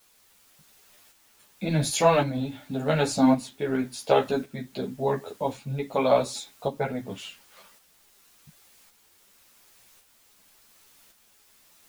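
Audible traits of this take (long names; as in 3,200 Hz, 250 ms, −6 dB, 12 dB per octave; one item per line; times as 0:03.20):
a quantiser's noise floor 10 bits, dither triangular
tremolo saw up 0.9 Hz, depth 45%
a shimmering, thickened sound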